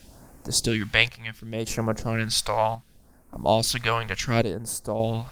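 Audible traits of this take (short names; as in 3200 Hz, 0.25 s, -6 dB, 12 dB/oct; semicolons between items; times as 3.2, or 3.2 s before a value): a quantiser's noise floor 10-bit, dither none; phasing stages 2, 0.69 Hz, lowest notch 250–3300 Hz; chopped level 0.6 Hz, depth 60%, duty 65%; Opus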